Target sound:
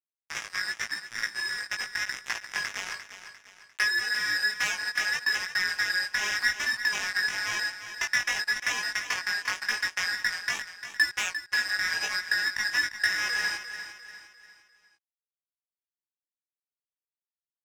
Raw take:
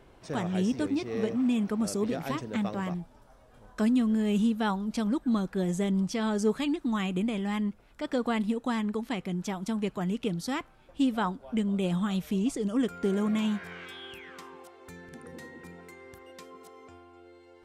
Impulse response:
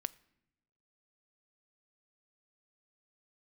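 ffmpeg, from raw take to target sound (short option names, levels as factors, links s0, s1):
-filter_complex "[0:a]afftfilt=real='real(if(lt(b,272),68*(eq(floor(b/68),0)*3+eq(floor(b/68),1)*0+eq(floor(b/68),2)*1+eq(floor(b/68),3)*2)+mod(b,68),b),0)':imag='imag(if(lt(b,272),68*(eq(floor(b/68),0)*3+eq(floor(b/68),1)*0+eq(floor(b/68),2)*1+eq(floor(b/68),3)*2)+mod(b,68),b),0)':win_size=2048:overlap=0.75,afwtdn=0.0158,aemphasis=mode=production:type=50kf,agate=range=0.112:threshold=0.00112:ratio=16:detection=peak,highpass=f=340:w=0.5412,highpass=f=340:w=1.3066,highshelf=f=3900:t=q:w=1.5:g=-6.5,dynaudnorm=f=620:g=11:m=2.24,asplit=2[s0][s1];[s1]alimiter=limit=0.141:level=0:latency=1:release=36,volume=1.12[s2];[s0][s2]amix=inputs=2:normalize=0,acrossover=split=910|2200|6700[s3][s4][s5][s6];[s3]acompressor=threshold=0.01:ratio=4[s7];[s4]acompressor=threshold=0.0794:ratio=4[s8];[s5]acompressor=threshold=0.0141:ratio=4[s9];[s7][s8][s9][s6]amix=inputs=4:normalize=0,acrusher=bits=2:mix=0:aa=0.5,flanger=delay=16.5:depth=3.7:speed=0.9,aecho=1:1:349|698|1047|1396:0.282|0.118|0.0497|0.0209"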